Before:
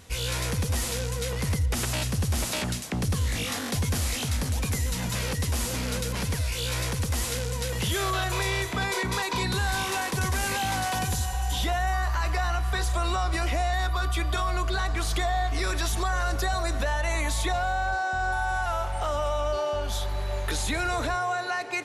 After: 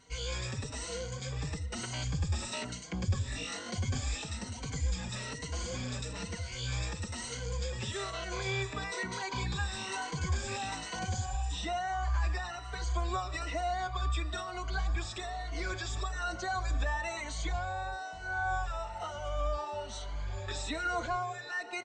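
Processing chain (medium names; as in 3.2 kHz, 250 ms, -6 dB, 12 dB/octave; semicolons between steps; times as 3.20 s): drifting ripple filter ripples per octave 1.9, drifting +1.1 Hz, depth 12 dB; brick-wall FIR low-pass 8.6 kHz; endless flanger 4.7 ms +1.5 Hz; trim -7 dB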